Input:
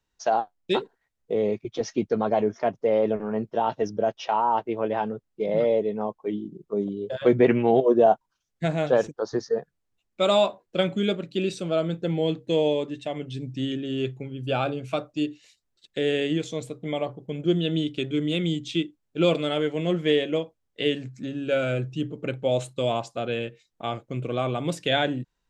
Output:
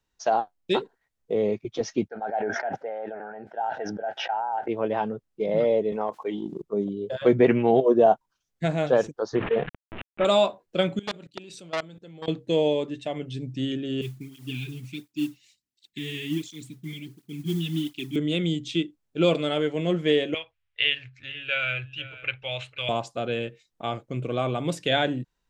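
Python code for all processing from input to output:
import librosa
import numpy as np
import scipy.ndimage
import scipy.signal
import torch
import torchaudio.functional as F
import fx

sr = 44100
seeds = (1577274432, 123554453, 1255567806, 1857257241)

y = fx.chain(x, sr, fx.double_bandpass(hz=1100.0, octaves=0.96),
    fx.sustainer(db_per_s=21.0), at=(2.08, 4.68))
y = fx.chain(y, sr, fx.weighting(curve='A'),
    fx.transient(attack_db=4, sustain_db=-9),
    fx.env_flatten(amount_pct=70), at=(5.92, 6.62))
y = fx.chain(y, sr, fx.cvsd(bps=16000),
    fx.env_flatten(amount_pct=70), at=(9.35, 10.25))
y = fx.chain(y, sr, fx.high_shelf(hz=2100.0, db=7.5),
    fx.level_steps(step_db=22),
    fx.transformer_sat(knee_hz=2300.0), at=(10.99, 12.28))
y = fx.chain(y, sr, fx.cheby2_bandstop(low_hz=510.0, high_hz=1300.0, order=4, stop_db=40),
    fx.mod_noise(seeds[0], snr_db=21),
    fx.flanger_cancel(hz=1.4, depth_ms=4.2), at=(14.01, 18.16))
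y = fx.chain(y, sr, fx.curve_eq(hz=(110.0, 190.0, 620.0, 1700.0, 2600.0, 8800.0), db=(0, -30, -11, 5, 11, -19)),
    fx.echo_single(ms=489, db=-17.0), at=(20.34, 22.89))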